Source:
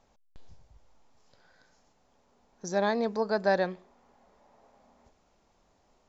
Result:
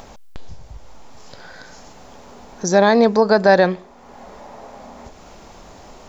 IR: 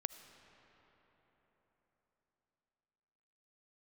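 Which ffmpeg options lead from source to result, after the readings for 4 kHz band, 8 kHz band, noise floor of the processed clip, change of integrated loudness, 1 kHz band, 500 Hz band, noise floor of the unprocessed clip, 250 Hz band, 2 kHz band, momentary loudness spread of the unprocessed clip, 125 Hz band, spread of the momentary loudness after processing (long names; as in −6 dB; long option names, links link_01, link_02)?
+14.0 dB, can't be measured, −44 dBFS, +14.0 dB, +13.5 dB, +14.0 dB, −68 dBFS, +15.0 dB, +13.5 dB, 13 LU, +15.0 dB, 11 LU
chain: -filter_complex "[0:a]asplit=2[link_01][link_02];[link_02]acompressor=mode=upward:threshold=-39dB:ratio=2.5,volume=0dB[link_03];[link_01][link_03]amix=inputs=2:normalize=0,alimiter=level_in=12.5dB:limit=-1dB:release=50:level=0:latency=1,volume=-2.5dB"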